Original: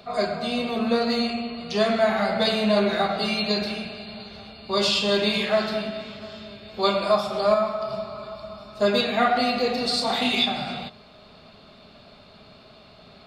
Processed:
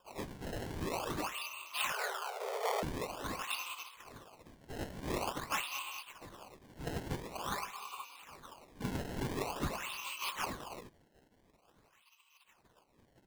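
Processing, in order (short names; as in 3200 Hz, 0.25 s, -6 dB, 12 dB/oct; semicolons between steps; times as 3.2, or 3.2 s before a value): spectral gate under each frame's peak -20 dB weak; double band-pass 1700 Hz, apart 1.3 oct; decimation with a swept rate 21×, swing 160% 0.47 Hz; 1.92–2.83 frequency shift +380 Hz; gain +6 dB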